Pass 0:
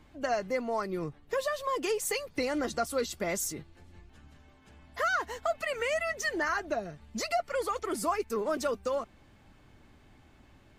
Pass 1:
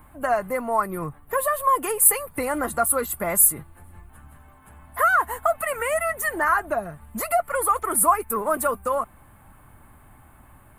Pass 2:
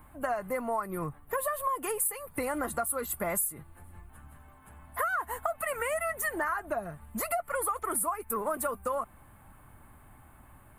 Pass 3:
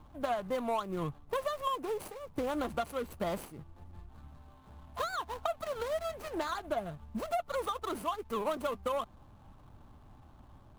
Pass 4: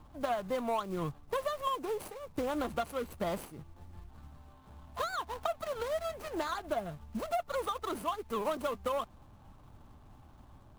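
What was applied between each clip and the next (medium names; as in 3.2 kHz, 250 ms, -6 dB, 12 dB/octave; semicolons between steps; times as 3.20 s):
FFT filter 120 Hz 0 dB, 400 Hz -7 dB, 1.1 kHz +6 dB, 5.8 kHz -20 dB, 9.6 kHz +15 dB; trim +8 dB
compression 12:1, threshold -23 dBFS, peak gain reduction 13 dB; trim -4 dB
median filter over 25 samples
block-companded coder 5-bit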